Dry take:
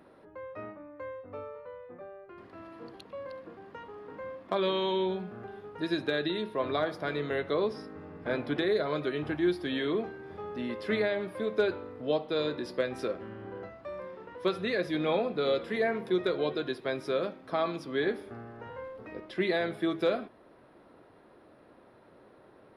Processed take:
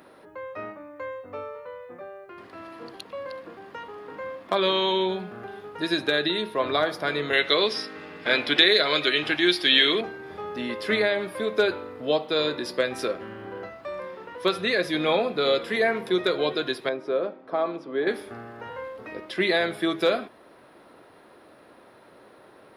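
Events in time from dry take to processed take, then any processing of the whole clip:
7.33–10.01 weighting filter D
16.89–18.07 band-pass 460 Hz, Q 0.75
whole clip: tilt +2 dB/oct; gain +7 dB

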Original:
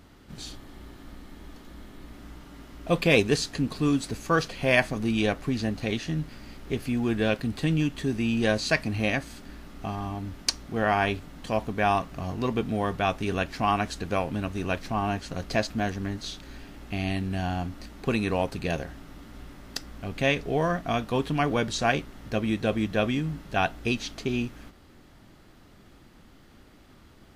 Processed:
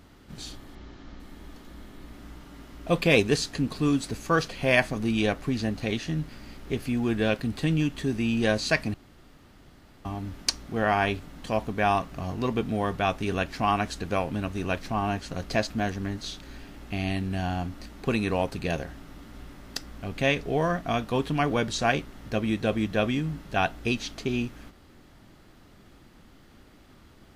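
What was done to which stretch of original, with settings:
0.75–1.2 steep low-pass 6700 Hz 48 dB/oct
8.94–10.05 room tone

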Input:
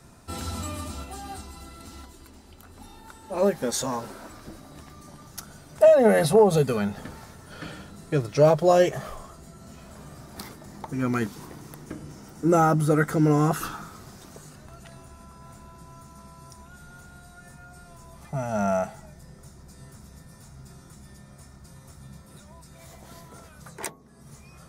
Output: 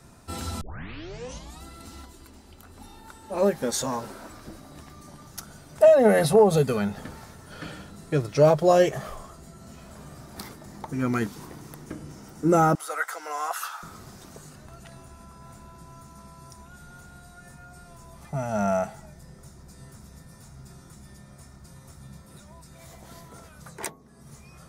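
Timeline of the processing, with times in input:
0.61 tape start 1.02 s
12.75–13.83 HPF 730 Hz 24 dB/oct

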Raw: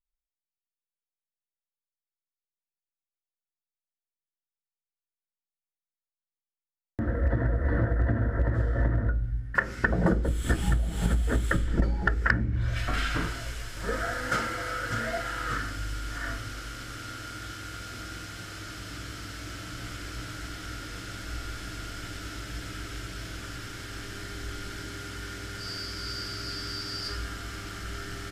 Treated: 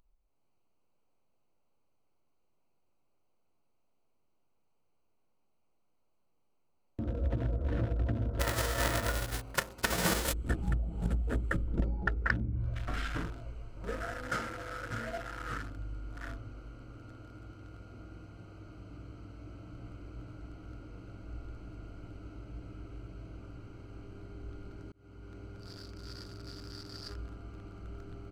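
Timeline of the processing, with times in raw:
8.39–10.32 spectral whitening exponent 0.3
24.92–25.35 fade in
whole clip: Wiener smoothing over 25 samples; upward compressor, threshold -43 dBFS; gain -6 dB

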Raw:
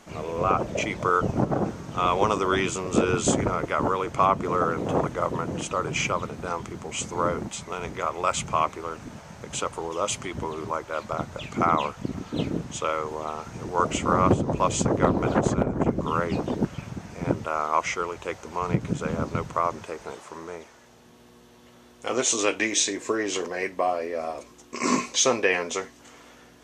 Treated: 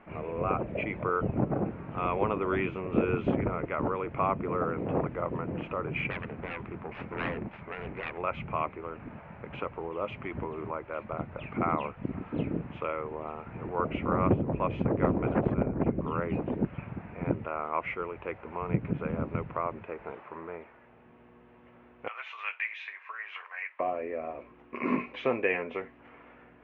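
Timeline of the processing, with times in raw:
6.1–8.18 self-modulated delay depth 0.96 ms
22.08–23.8 HPF 1100 Hz 24 dB/oct
whole clip: elliptic low-pass 2500 Hz, stop band 80 dB; dynamic EQ 1100 Hz, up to -6 dB, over -37 dBFS, Q 0.79; gain -2.5 dB

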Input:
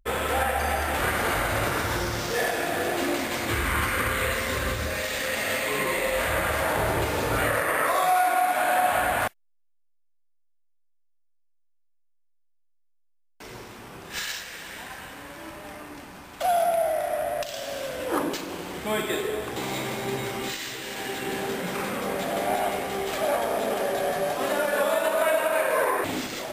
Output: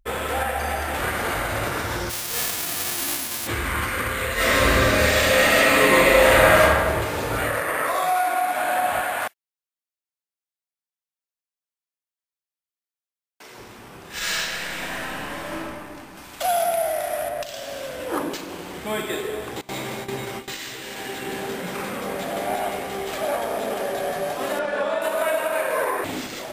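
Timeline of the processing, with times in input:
2.09–3.46 spectral whitening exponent 0.1
4.34–6.61 reverb throw, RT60 1.4 s, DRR -10.5 dB
9.01–13.58 HPF 490 Hz 6 dB/oct
14.17–15.57 reverb throw, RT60 1.7 s, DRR -8.5 dB
16.17–17.29 high shelf 2400 Hz +8 dB
19.61–20.61 gate with hold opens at -20 dBFS, closes at -27 dBFS
24.59–25.02 air absorption 110 m

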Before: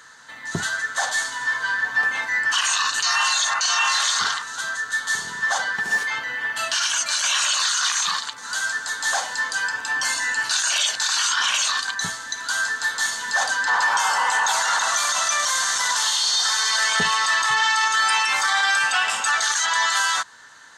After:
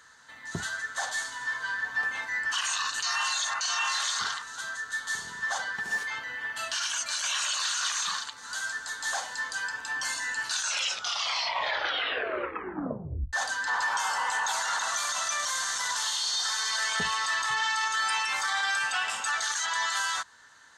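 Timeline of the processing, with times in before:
7.26–7.86 echo throw 0.37 s, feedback 15%, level -8.5 dB
10.54 tape stop 2.79 s
whole clip: bell 65 Hz +11 dB 0.69 oct; gain -8.5 dB

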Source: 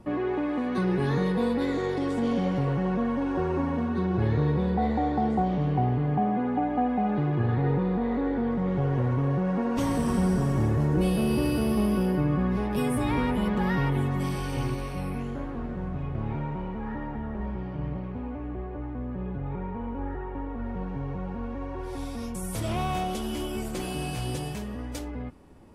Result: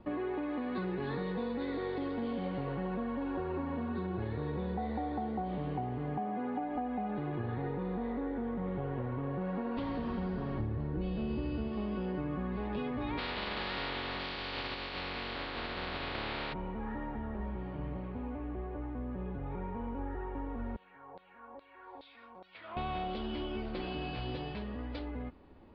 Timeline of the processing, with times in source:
6.18–6.76 HPF 170 Hz 6 dB/oct
8.12–9.41 air absorption 140 m
10.6–11.68 low shelf 210 Hz +10 dB
13.17–16.52 spectral contrast lowered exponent 0.27
20.76–22.77 LFO band-pass saw down 2.4 Hz 630–4300 Hz
whole clip: bell 140 Hz -6.5 dB 0.77 oct; compressor, threshold -29 dBFS; steep low-pass 4500 Hz 72 dB/oct; gain -3.5 dB

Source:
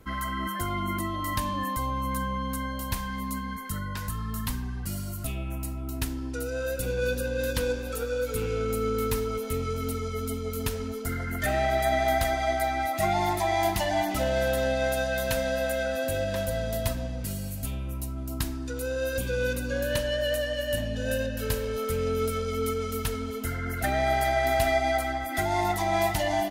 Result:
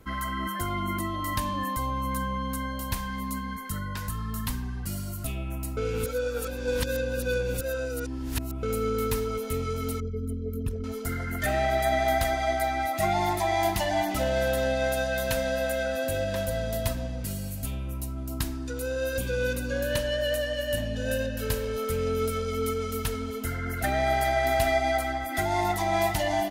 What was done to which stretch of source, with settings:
5.77–8.63 reverse
10–10.84 formant sharpening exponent 2

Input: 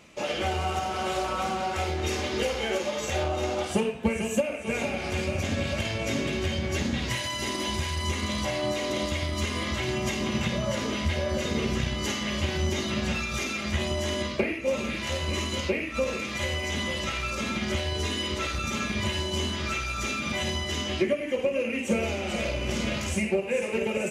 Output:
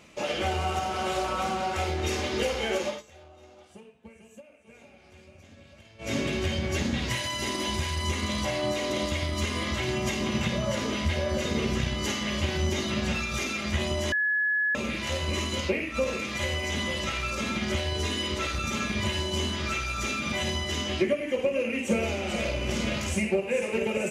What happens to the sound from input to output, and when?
2.87–6.14 dip -23.5 dB, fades 0.16 s
14.12–14.75 bleep 1700 Hz -22.5 dBFS

